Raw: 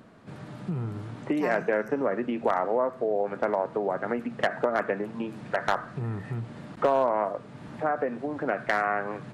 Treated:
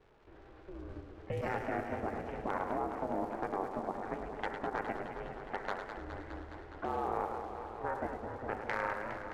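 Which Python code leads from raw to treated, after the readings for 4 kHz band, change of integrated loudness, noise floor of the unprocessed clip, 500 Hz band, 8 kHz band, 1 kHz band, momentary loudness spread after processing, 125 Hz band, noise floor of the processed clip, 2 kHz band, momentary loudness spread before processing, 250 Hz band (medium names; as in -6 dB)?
-10.5 dB, -10.0 dB, -45 dBFS, -12.0 dB, no reading, -7.5 dB, 11 LU, -10.5 dB, -55 dBFS, -9.5 dB, 10 LU, -10.0 dB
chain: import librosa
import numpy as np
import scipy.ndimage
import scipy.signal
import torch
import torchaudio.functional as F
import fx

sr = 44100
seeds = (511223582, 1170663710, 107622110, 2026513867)

p1 = x * np.sin(2.0 * np.pi * 190.0 * np.arange(len(x)) / sr)
p2 = fx.hum_notches(p1, sr, base_hz=50, count=10)
p3 = fx.level_steps(p2, sr, step_db=10)
p4 = fx.dmg_crackle(p3, sr, seeds[0], per_s=280.0, level_db=-46.0)
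p5 = fx.env_lowpass(p4, sr, base_hz=2400.0, full_db=-26.5)
p6 = p5 + fx.echo_single(p5, sr, ms=106, db=-8.0, dry=0)
p7 = fx.echo_warbled(p6, sr, ms=207, feedback_pct=79, rate_hz=2.8, cents=143, wet_db=-9.0)
y = F.gain(torch.from_numpy(p7), -5.5).numpy()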